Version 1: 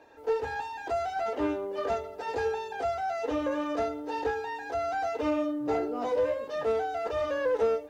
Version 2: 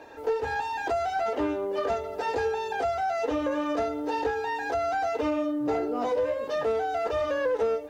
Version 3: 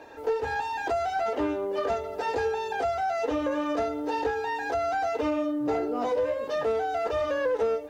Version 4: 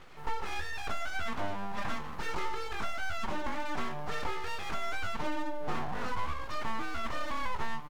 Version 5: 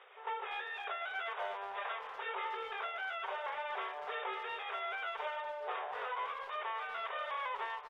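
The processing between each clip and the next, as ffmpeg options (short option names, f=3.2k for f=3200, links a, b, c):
-af "acompressor=threshold=-37dB:ratio=2.5,volume=9dB"
-af anull
-filter_complex "[0:a]aeval=exprs='abs(val(0))':c=same,asplit=2[a][b];[b]adelay=26,volume=-13dB[c];[a][c]amix=inputs=2:normalize=0,volume=-4dB"
-filter_complex "[0:a]afftfilt=real='re*between(b*sr/4096,380,3800)':imag='im*between(b*sr/4096,380,3800)':win_size=4096:overlap=0.75,asplit=2[a][b];[b]adelay=240,highpass=300,lowpass=3.4k,asoftclip=type=hard:threshold=-35dB,volume=-12dB[c];[a][c]amix=inputs=2:normalize=0,volume=-2dB"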